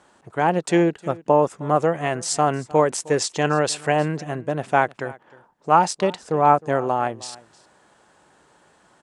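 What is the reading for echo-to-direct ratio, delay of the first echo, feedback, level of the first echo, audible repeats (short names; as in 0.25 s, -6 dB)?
-21.5 dB, 0.31 s, no steady repeat, -21.5 dB, 1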